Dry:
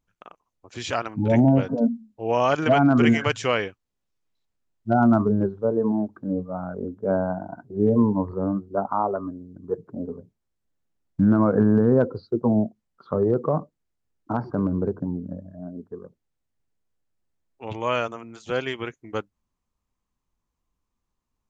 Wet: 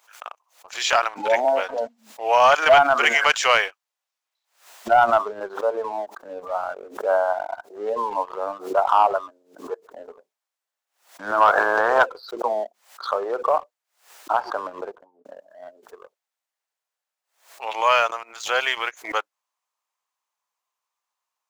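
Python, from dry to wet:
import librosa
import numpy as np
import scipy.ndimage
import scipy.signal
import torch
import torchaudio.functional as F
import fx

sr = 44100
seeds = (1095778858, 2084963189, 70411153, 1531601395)

y = fx.spec_clip(x, sr, under_db=19, at=(11.4, 12.05), fade=0.02)
y = fx.studio_fade_out(y, sr, start_s=14.76, length_s=0.49)
y = scipy.signal.sosfilt(scipy.signal.butter(4, 670.0, 'highpass', fs=sr, output='sos'), y)
y = fx.leveller(y, sr, passes=1)
y = fx.pre_swell(y, sr, db_per_s=140.0)
y = y * librosa.db_to_amplitude(6.0)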